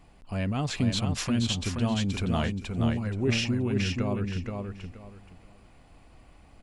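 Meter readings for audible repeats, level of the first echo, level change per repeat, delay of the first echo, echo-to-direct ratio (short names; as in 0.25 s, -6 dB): 3, -4.5 dB, -12.5 dB, 0.476 s, -4.0 dB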